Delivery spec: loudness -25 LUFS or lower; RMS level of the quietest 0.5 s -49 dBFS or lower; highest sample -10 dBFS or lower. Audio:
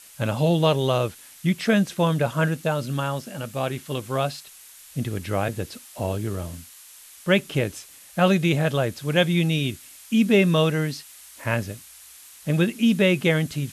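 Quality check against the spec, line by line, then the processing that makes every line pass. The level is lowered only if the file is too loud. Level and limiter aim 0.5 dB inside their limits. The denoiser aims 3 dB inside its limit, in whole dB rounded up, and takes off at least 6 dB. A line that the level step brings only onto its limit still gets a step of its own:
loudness -23.5 LUFS: fail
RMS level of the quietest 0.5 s -47 dBFS: fail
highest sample -6.0 dBFS: fail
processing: denoiser 6 dB, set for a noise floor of -47 dBFS; gain -2 dB; limiter -10.5 dBFS

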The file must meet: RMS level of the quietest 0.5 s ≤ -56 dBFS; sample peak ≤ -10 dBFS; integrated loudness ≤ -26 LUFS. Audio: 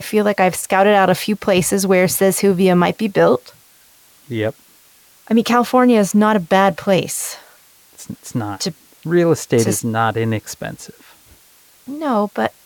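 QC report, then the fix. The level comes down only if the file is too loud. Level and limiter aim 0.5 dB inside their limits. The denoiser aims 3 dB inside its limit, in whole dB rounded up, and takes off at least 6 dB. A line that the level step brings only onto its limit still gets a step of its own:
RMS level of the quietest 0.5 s -50 dBFS: fail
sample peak -3.0 dBFS: fail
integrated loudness -16.0 LUFS: fail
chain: gain -10.5 dB

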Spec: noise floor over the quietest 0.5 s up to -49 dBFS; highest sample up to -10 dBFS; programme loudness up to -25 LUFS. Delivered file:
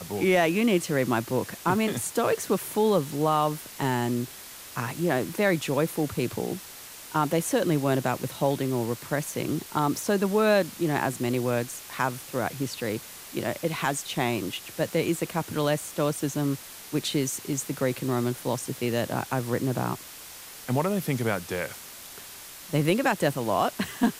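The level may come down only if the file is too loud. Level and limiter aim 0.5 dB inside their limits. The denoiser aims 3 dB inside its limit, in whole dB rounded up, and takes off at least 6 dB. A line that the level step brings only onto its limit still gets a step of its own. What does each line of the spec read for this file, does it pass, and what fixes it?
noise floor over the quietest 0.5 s -44 dBFS: fail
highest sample -9.5 dBFS: fail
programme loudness -27.0 LUFS: OK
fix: denoiser 8 dB, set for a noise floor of -44 dBFS; limiter -10.5 dBFS

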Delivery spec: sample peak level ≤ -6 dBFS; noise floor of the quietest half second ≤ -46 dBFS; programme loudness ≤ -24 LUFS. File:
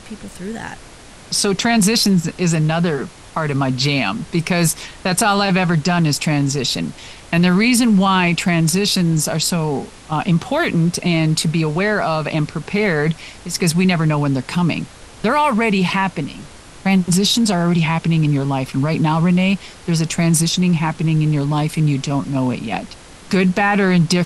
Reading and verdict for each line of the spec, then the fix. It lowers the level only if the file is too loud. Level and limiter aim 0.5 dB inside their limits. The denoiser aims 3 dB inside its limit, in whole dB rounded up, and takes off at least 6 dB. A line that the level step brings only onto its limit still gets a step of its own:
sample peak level -3.5 dBFS: fail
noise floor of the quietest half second -40 dBFS: fail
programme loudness -17.0 LUFS: fail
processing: gain -7.5 dB

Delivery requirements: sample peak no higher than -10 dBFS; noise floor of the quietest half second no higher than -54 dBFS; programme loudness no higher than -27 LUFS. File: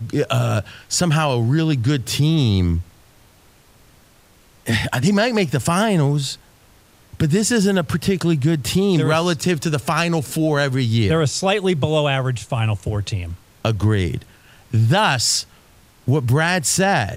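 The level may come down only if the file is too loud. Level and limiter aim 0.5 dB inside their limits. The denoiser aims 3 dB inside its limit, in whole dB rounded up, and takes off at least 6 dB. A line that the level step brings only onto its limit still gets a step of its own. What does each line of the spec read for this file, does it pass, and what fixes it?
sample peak -3.5 dBFS: fail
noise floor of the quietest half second -52 dBFS: fail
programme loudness -19.0 LUFS: fail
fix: gain -8.5 dB

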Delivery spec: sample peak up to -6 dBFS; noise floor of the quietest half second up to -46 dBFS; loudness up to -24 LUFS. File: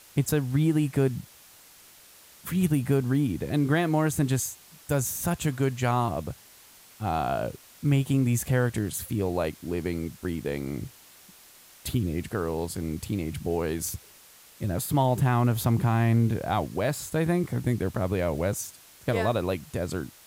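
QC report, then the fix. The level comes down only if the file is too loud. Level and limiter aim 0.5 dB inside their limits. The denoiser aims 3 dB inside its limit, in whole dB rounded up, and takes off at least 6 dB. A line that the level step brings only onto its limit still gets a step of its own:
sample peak -10.0 dBFS: OK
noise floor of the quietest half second -53 dBFS: OK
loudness -27.5 LUFS: OK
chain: none

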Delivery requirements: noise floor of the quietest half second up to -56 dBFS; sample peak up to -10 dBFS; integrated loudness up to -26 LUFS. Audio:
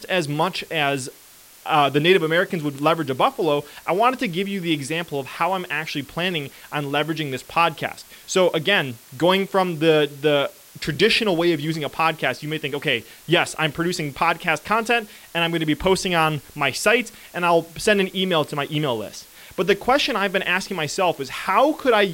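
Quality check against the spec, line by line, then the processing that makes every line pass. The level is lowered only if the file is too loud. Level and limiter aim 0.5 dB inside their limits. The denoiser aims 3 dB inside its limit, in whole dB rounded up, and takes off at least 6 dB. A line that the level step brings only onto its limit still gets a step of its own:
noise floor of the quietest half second -48 dBFS: fail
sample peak -5.0 dBFS: fail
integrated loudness -21.0 LUFS: fail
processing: denoiser 6 dB, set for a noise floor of -48 dBFS; gain -5.5 dB

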